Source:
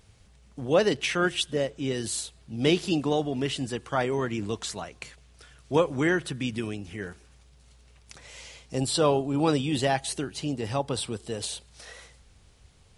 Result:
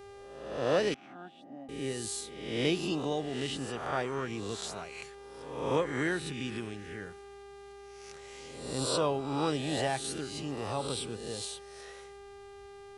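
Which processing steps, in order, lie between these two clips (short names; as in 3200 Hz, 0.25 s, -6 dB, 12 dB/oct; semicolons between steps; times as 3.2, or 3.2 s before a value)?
spectral swells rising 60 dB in 0.90 s; buzz 400 Hz, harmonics 28, -41 dBFS -8 dB/oct; 0.94–1.69 double band-pass 450 Hz, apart 1.5 oct; gain -8.5 dB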